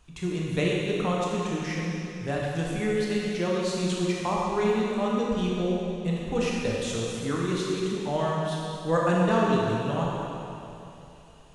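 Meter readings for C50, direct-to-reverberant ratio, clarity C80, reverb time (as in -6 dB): -2.5 dB, -4.5 dB, -1.0 dB, 2.9 s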